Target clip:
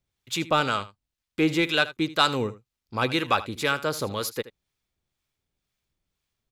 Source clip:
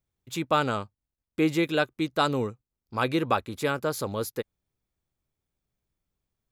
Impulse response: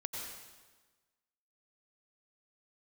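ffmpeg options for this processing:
-filter_complex "[0:a]equalizer=f=3.4k:w=0.46:g=8.5,asplit=2[a][b];[b]asoftclip=type=tanh:threshold=-17.5dB,volume=-5.5dB[c];[a][c]amix=inputs=2:normalize=0,acrossover=split=820[d][e];[d]aeval=exprs='val(0)*(1-0.5/2+0.5/2*cos(2*PI*2*n/s))':c=same[f];[e]aeval=exprs='val(0)*(1-0.5/2-0.5/2*cos(2*PI*2*n/s))':c=same[g];[f][g]amix=inputs=2:normalize=0,aecho=1:1:78:0.15,volume=-1.5dB"

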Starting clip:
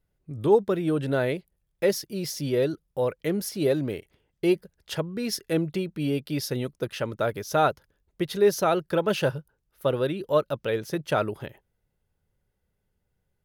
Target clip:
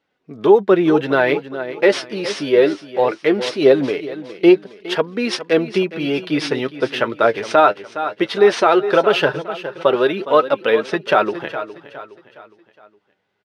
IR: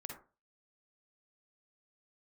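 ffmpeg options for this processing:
-af "acrusher=samples=3:mix=1:aa=0.000001,highpass=370,equalizer=f=540:t=o:w=0.41:g=-5,aecho=1:1:413|826|1239|1652:0.2|0.0838|0.0352|0.0148,flanger=delay=3.6:depth=6.7:regen=41:speed=0.19:shape=triangular,lowpass=3.3k,alimiter=level_in=19.5dB:limit=-1dB:release=50:level=0:latency=1,volume=-1dB"

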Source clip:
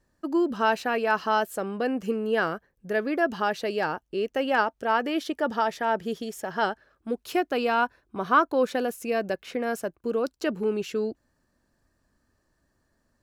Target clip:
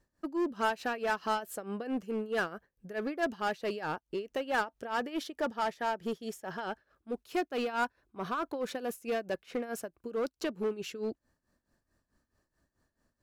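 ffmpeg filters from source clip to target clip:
-filter_complex "[0:a]tremolo=f=4.6:d=0.82,asplit=2[a][b];[b]aeval=exprs='0.0447*(abs(mod(val(0)/0.0447+3,4)-2)-1)':c=same,volume=-5.5dB[c];[a][c]amix=inputs=2:normalize=0,volume=-6dB"

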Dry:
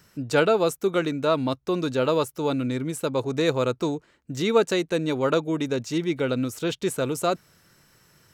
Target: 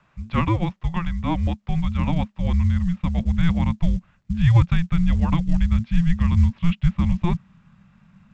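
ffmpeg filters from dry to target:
-af "asubboost=boost=9.5:cutoff=230,highpass=f=160:t=q:w=0.5412,highpass=f=160:t=q:w=1.307,lowpass=f=3.4k:t=q:w=0.5176,lowpass=f=3.4k:t=q:w=0.7071,lowpass=f=3.4k:t=q:w=1.932,afreqshift=-340" -ar 16000 -c:a pcm_mulaw

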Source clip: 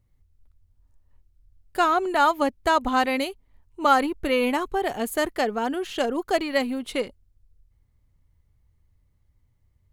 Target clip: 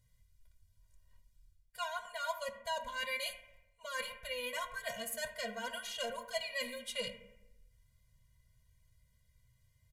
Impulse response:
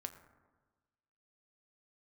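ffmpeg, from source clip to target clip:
-filter_complex "[0:a]tiltshelf=f=1.3k:g=-8.5,areverse,acompressor=threshold=-38dB:ratio=5,areverse,aresample=32000,aresample=44100[a];[1:a]atrim=start_sample=2205,asetrate=66150,aresample=44100[b];[a][b]afir=irnorm=-1:irlink=0,afftfilt=real='re*eq(mod(floor(b*sr/1024/230),2),0)':imag='im*eq(mod(floor(b*sr/1024/230),2),0)':win_size=1024:overlap=0.75,volume=10.5dB"

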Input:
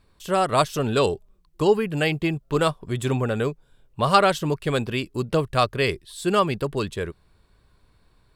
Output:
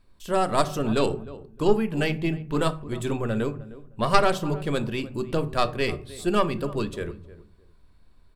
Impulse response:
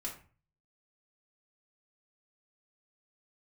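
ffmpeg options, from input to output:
-filter_complex "[0:a]asplit=2[a][b];[b]adelay=308,lowpass=f=1.2k:p=1,volume=-16.5dB,asplit=2[c][d];[d]adelay=308,lowpass=f=1.2k:p=1,volume=0.23[e];[a][c][e]amix=inputs=3:normalize=0,aeval=exprs='0.794*(cos(1*acos(clip(val(0)/0.794,-1,1)))-cos(1*PI/2))+0.282*(cos(2*acos(clip(val(0)/0.794,-1,1)))-cos(2*PI/2))':c=same,asplit=2[f][g];[1:a]atrim=start_sample=2205,lowshelf=f=460:g=10.5[h];[g][h]afir=irnorm=-1:irlink=0,volume=-8dB[i];[f][i]amix=inputs=2:normalize=0,volume=-6dB"

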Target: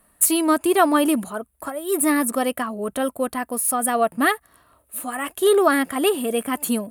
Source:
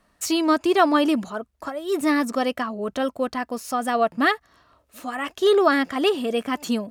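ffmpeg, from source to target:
-af "highshelf=f=7.7k:t=q:w=3:g=12,volume=1dB"

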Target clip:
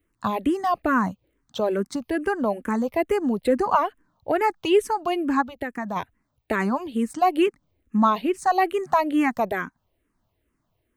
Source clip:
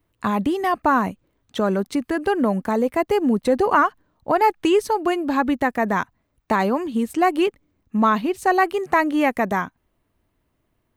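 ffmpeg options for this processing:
-filter_complex "[0:a]asplit=3[a][b][c];[a]afade=t=out:st=5.41:d=0.02[d];[b]acompressor=threshold=-25dB:ratio=3,afade=t=in:st=5.41:d=0.02,afade=t=out:st=5.95:d=0.02[e];[c]afade=t=in:st=5.95:d=0.02[f];[d][e][f]amix=inputs=3:normalize=0,asplit=2[g][h];[h]afreqshift=-2.3[i];[g][i]amix=inputs=2:normalize=1"

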